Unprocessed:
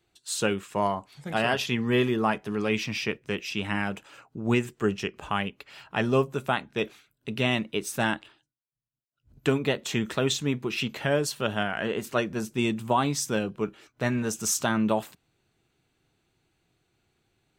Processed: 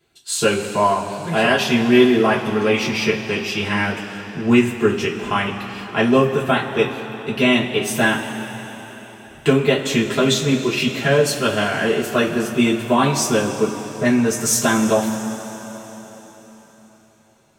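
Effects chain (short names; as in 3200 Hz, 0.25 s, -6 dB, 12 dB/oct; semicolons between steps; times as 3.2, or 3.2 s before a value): 13.39–14.05 LPF 1700 Hz; two-slope reverb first 0.21 s, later 4.4 s, from -20 dB, DRR -6.5 dB; gain +2 dB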